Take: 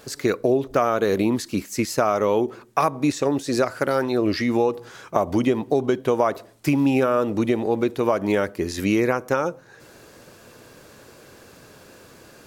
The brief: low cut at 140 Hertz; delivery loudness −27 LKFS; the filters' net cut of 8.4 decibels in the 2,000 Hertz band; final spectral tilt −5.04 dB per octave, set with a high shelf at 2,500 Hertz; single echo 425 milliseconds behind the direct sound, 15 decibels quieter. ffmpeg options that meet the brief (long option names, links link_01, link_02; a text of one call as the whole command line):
ffmpeg -i in.wav -af "highpass=140,equalizer=frequency=2000:width_type=o:gain=-8,highshelf=frequency=2500:gain=-8,aecho=1:1:425:0.178,volume=-3.5dB" out.wav